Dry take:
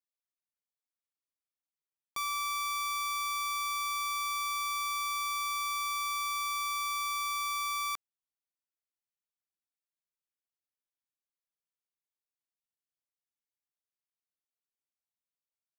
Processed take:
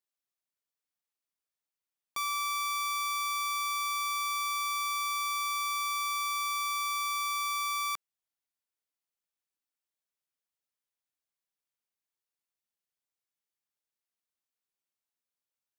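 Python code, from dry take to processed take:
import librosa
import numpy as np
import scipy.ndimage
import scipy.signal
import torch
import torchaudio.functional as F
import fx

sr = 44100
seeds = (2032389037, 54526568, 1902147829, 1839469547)

y = fx.low_shelf(x, sr, hz=200.0, db=-5.0)
y = F.gain(torch.from_numpy(y), 1.5).numpy()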